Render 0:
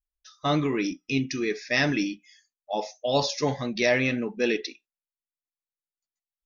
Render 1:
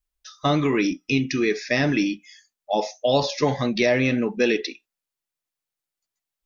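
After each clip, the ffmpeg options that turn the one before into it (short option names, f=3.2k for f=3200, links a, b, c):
-filter_complex "[0:a]acrossover=split=650|4000[a][b][c];[a]acompressor=threshold=-26dB:ratio=4[d];[b]acompressor=threshold=-32dB:ratio=4[e];[c]acompressor=threshold=-45dB:ratio=4[f];[d][e][f]amix=inputs=3:normalize=0,volume=7.5dB"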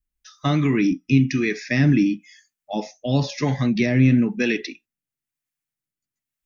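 -filter_complex "[0:a]equalizer=f=125:t=o:w=1:g=9,equalizer=f=250:t=o:w=1:g=6,equalizer=f=500:t=o:w=1:g=-7,equalizer=f=1k:t=o:w=1:g=-5,equalizer=f=2k:t=o:w=1:g=3,equalizer=f=4k:t=o:w=1:g=-5,acrossover=split=430[a][b];[a]aeval=exprs='val(0)*(1-0.5/2+0.5/2*cos(2*PI*1*n/s))':c=same[c];[b]aeval=exprs='val(0)*(1-0.5/2-0.5/2*cos(2*PI*1*n/s))':c=same[d];[c][d]amix=inputs=2:normalize=0,volume=1.5dB"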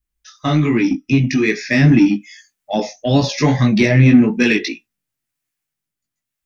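-filter_complex "[0:a]dynaudnorm=f=280:g=11:m=11.5dB,flanger=delay=17:depth=2.8:speed=2.5,asplit=2[a][b];[b]asoftclip=type=tanh:threshold=-20.5dB,volume=-8dB[c];[a][c]amix=inputs=2:normalize=0,volume=4.5dB"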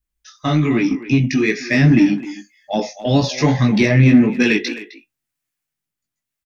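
-filter_complex "[0:a]asplit=2[a][b];[b]adelay=260,highpass=300,lowpass=3.4k,asoftclip=type=hard:threshold=-10.5dB,volume=-13dB[c];[a][c]amix=inputs=2:normalize=0,volume=-1dB"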